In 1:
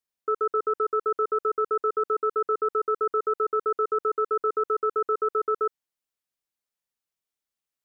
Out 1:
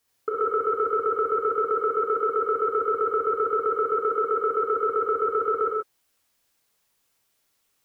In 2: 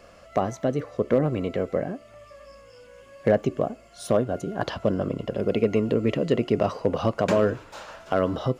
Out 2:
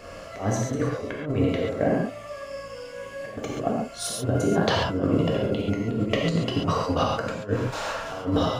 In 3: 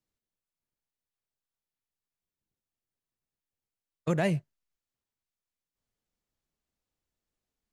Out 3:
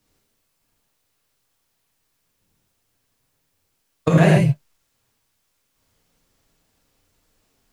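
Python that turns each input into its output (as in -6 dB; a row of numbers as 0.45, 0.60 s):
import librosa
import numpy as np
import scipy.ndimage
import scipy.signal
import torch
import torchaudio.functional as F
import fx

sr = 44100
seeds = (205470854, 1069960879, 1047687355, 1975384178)

y = fx.over_compress(x, sr, threshold_db=-29.0, ratio=-0.5)
y = fx.rev_gated(y, sr, seeds[0], gate_ms=160, shape='flat', drr_db=-3.0)
y = y * 10.0 ** (-26 / 20.0) / np.sqrt(np.mean(np.square(y)))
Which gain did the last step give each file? +6.0, +0.5, +13.5 dB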